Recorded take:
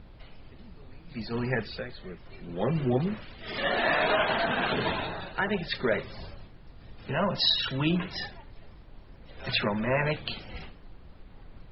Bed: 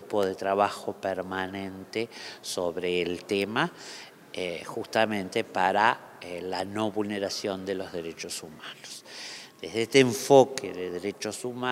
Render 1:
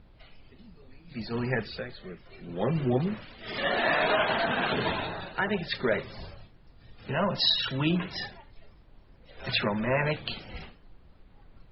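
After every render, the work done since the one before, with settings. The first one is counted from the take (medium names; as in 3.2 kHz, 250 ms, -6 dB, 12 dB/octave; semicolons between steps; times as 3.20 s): noise print and reduce 6 dB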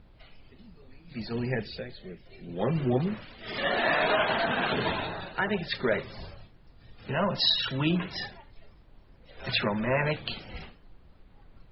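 1.33–2.59 s: peaking EQ 1.2 kHz -12 dB 0.78 oct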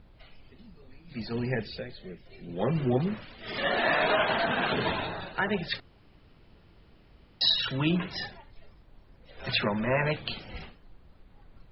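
5.80–7.41 s: room tone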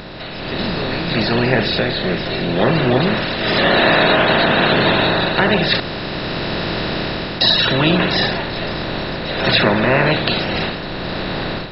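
spectral levelling over time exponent 0.4; level rider gain up to 12 dB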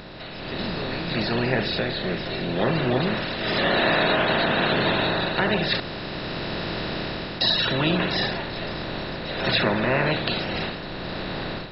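trim -7.5 dB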